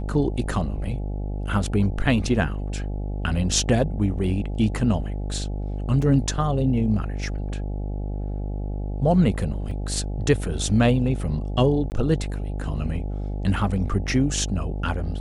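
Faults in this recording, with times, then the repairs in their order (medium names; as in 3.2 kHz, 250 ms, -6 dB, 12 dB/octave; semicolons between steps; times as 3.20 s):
buzz 50 Hz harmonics 17 -28 dBFS
6.02 s: dropout 3.6 ms
9.71 s: dropout 3.4 ms
11.90–11.92 s: dropout 19 ms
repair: de-hum 50 Hz, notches 17; interpolate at 6.02 s, 3.6 ms; interpolate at 9.71 s, 3.4 ms; interpolate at 11.90 s, 19 ms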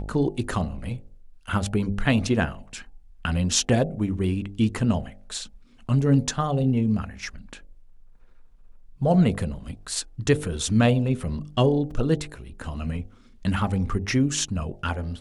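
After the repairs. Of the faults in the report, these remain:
nothing left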